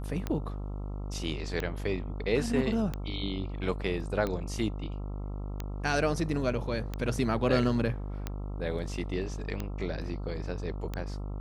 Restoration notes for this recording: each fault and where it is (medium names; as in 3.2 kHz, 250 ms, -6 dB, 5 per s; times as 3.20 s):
buzz 50 Hz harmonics 27 -36 dBFS
tick 45 rpm -19 dBFS